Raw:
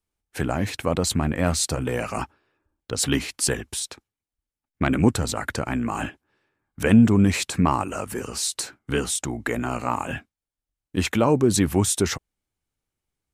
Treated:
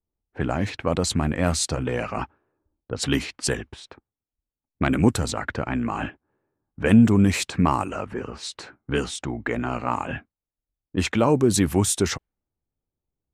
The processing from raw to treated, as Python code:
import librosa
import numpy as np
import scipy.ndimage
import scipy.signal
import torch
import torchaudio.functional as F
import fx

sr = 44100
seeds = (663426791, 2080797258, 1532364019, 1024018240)

y = fx.env_lowpass(x, sr, base_hz=710.0, full_db=-17.5)